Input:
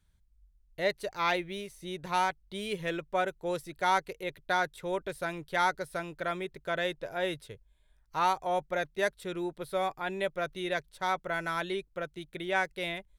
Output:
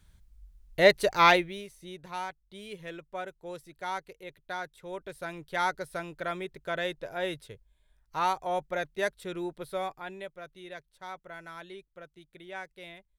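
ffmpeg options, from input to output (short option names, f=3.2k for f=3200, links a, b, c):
-af "volume=17.5dB,afade=t=out:st=1.24:d=0.28:silence=0.281838,afade=t=out:st=1.52:d=0.6:silence=0.446684,afade=t=in:st=4.8:d=0.96:silence=0.421697,afade=t=out:st=9.58:d=0.74:silence=0.281838"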